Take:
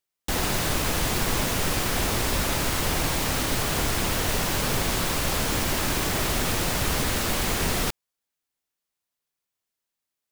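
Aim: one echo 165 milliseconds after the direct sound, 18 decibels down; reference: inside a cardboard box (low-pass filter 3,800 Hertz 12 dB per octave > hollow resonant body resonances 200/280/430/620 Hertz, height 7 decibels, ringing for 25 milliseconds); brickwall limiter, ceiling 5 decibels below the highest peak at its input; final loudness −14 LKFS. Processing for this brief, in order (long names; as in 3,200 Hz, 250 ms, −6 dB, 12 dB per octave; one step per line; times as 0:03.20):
brickwall limiter −16.5 dBFS
low-pass filter 3,800 Hz 12 dB per octave
single-tap delay 165 ms −18 dB
hollow resonant body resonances 200/280/430/620 Hz, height 7 dB, ringing for 25 ms
level +11 dB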